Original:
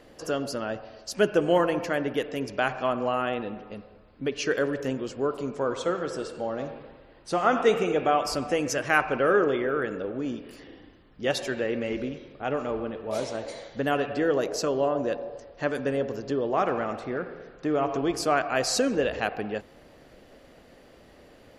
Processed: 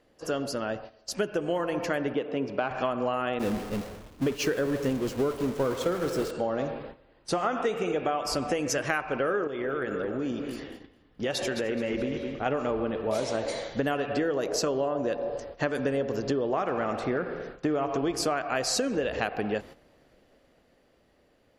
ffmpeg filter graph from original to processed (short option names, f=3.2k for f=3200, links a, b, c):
-filter_complex "[0:a]asettb=1/sr,asplit=3[a][b][c];[a]atrim=end=2.144[d];[b]atrim=start=2.14:end=2.71,asetpts=PTS-STARTPTS,afade=t=in:d=0.004:c=qsin,afade=t=out:st=0.566:d=0.004:c=qsin,equalizer=f=1.8k:t=o:w=0.4:g=-8,asoftclip=type=hard:threshold=-17dB,highpass=130,lowpass=2.5k[e];[c]atrim=start=2.706[f];[d][e]acrossfade=d=0.004:c1=hsin:c2=qsin[g];[g][f]acrossfade=d=0.004:c1=qsin:c2=hsin,asettb=1/sr,asplit=3[h][i][j];[h]atrim=end=3.394[k];[i]atrim=start=3.39:end=6.31,asetpts=PTS-STARTPTS,afade=t=in:d=0.004:c=qsin,afade=t=out:st=2.916:d=0.004:c=qsin,aeval=exprs='val(0)+0.5*0.0376*sgn(val(0))':c=same,agate=range=-33dB:threshold=-25dB:ratio=3:release=100:detection=peak,lowshelf=f=450:g=6.5[l];[j]atrim=start=6.306[m];[k][l]acrossfade=d=0.004:c1=hsin:c2=qsin[n];[n][m]acrossfade=d=0.004:c1=qsin:c2=hsin,asettb=1/sr,asplit=3[o][p][q];[o]atrim=end=9.474[r];[p]atrim=start=9.47:end=12.46,asetpts=PTS-STARTPTS,afade=t=in:d=0.004:c=qsin,afade=t=out:st=2.986:d=0.004:c=qsin,aecho=1:1:213|426|639|852:0.266|0.0905|0.0308|0.0105,atrim=end_sample=131859,acompressor=threshold=-32dB:ratio=3:attack=3.2:release=140:knee=1:detection=peak[s];[q]atrim=start=12.456[t];[r][s]acrossfade=d=0.004:c1=hsin:c2=qsin[u];[u][t]acrossfade=d=0.004:c1=qsin:c2=hsin,dynaudnorm=f=310:g=13:m=7dB,agate=range=-12dB:threshold=-41dB:ratio=16:detection=peak,acompressor=threshold=-24dB:ratio=12"